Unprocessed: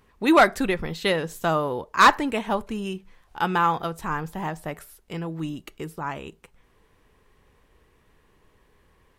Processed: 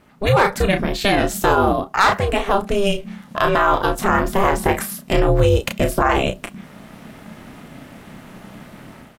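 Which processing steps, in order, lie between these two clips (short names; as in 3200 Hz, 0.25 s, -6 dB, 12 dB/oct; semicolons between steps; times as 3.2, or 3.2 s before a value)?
ring modulator 200 Hz; in parallel at +1 dB: compressor, threshold -32 dBFS, peak gain reduction 18 dB; on the sum: doubler 32 ms -7 dB; AGC gain up to 13 dB; maximiser +7.5 dB; gain -4 dB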